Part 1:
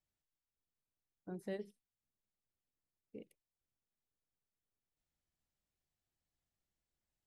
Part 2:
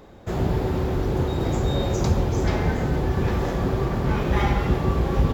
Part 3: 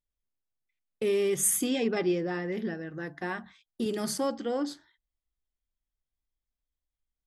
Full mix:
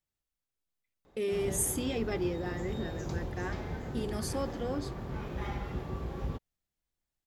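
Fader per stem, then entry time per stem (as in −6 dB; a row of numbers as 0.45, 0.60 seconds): 0.0, −15.5, −5.5 decibels; 0.00, 1.05, 0.15 seconds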